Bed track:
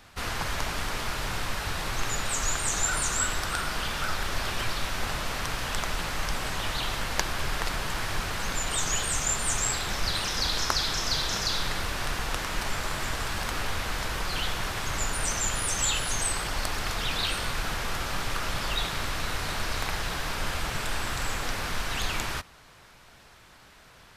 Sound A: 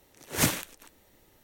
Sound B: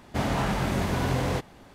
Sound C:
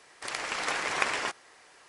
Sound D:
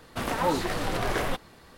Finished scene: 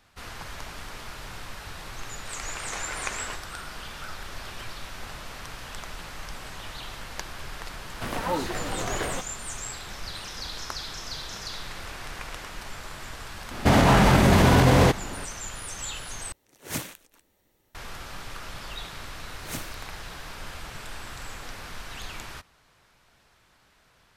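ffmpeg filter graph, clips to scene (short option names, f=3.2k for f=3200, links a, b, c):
-filter_complex "[3:a]asplit=2[a][b];[1:a]asplit=2[c][d];[0:a]volume=-8.5dB[e];[2:a]alimiter=level_in=20dB:limit=-1dB:release=50:level=0:latency=1[f];[e]asplit=2[g][h];[g]atrim=end=16.324[i];[c]atrim=end=1.43,asetpts=PTS-STARTPTS,volume=-7.5dB[j];[h]atrim=start=17.746[k];[a]atrim=end=1.88,asetpts=PTS-STARTPTS,volume=-5.5dB,afade=t=in:d=0.004:c=hsin,afade=t=out:st=1.876:d=0.004:c=hsin,adelay=2050[l];[4:a]atrim=end=1.77,asetpts=PTS-STARTPTS,volume=-2.5dB,afade=t=in:d=0.004:c=hsin,afade=t=out:st=1.766:d=0.004:c=hsin,adelay=7850[m];[b]atrim=end=1.88,asetpts=PTS-STARTPTS,volume=-14.5dB,afade=t=in:d=0.004:c=hsin,afade=t=out:st=1.876:d=0.004:c=hsin,adelay=11190[n];[f]atrim=end=1.74,asetpts=PTS-STARTPTS,volume=-7.5dB,afade=t=in:d=0.004:c=hsin,afade=t=out:st=1.736:d=0.004:c=hsin,adelay=13510[o];[d]atrim=end=1.43,asetpts=PTS-STARTPTS,volume=-11.5dB,afade=t=in:d=0.004:c=hsin,afade=t=out:st=1.426:d=0.004:c=hsin,adelay=19110[p];[i][j]acrossfade=d=0.004:c1=hsin:c2=hsin[q];[q][k]acrossfade=d=0.004:c1=hsin:c2=hsin[r];[r][l][m][n][o][p]amix=inputs=6:normalize=0"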